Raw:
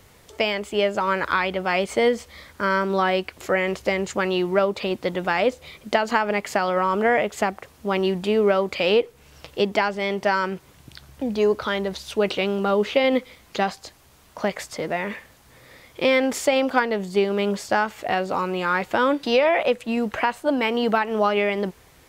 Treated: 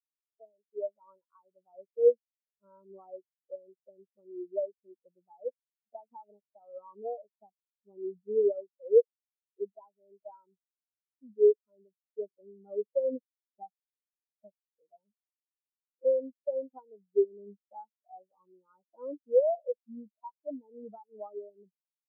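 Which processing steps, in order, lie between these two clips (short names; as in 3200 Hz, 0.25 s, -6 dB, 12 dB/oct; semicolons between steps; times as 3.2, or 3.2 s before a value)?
inverse Chebyshev low-pass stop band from 5500 Hz, stop band 70 dB; spectral expander 4:1; gain -4.5 dB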